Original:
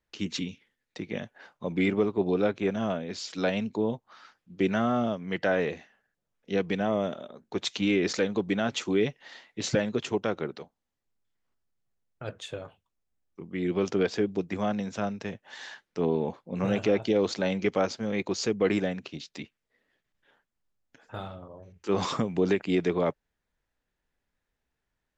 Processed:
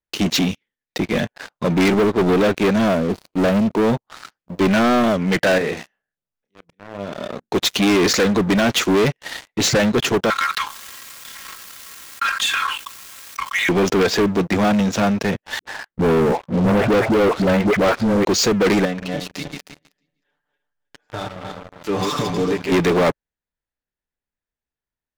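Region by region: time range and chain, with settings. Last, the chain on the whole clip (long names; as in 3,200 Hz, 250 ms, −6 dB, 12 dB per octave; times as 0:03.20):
0:02.89–0:03.87: running median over 25 samples + noise gate −54 dBFS, range −14 dB + high-shelf EQ 2,300 Hz −6.5 dB
0:05.58–0:07.40: downward compressor 4 to 1, threshold −38 dBFS + volume swells 692 ms + double-tracking delay 30 ms −7 dB
0:10.30–0:13.69: Butterworth high-pass 960 Hz 96 dB per octave + comb filter 3.7 ms, depth 98% + envelope flattener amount 70%
0:15.59–0:18.25: low-pass filter 1,600 Hz + all-pass dispersion highs, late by 84 ms, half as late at 420 Hz
0:18.85–0:22.72: feedback delay that plays each chunk backwards 157 ms, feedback 45%, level −3 dB + comb filter 6.8 ms + downward compressor 1.5 to 1, threshold −60 dBFS
whole clip: dynamic equaliser 1,700 Hz, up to +3 dB, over −44 dBFS, Q 1.9; leveller curve on the samples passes 5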